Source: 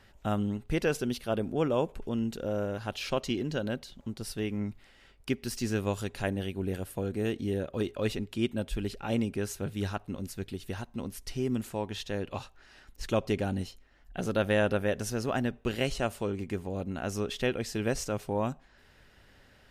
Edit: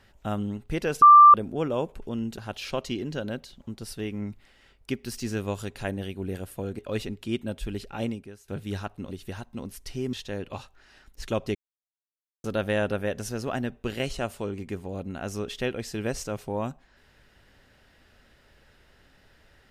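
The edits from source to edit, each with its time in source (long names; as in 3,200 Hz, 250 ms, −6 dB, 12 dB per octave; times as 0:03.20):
0:01.02–0:01.34: beep over 1,180 Hz −8 dBFS
0:02.38–0:02.77: remove
0:07.18–0:07.89: remove
0:09.13–0:09.58: fade out quadratic, to −18.5 dB
0:10.21–0:10.52: remove
0:11.54–0:11.94: remove
0:13.36–0:14.25: silence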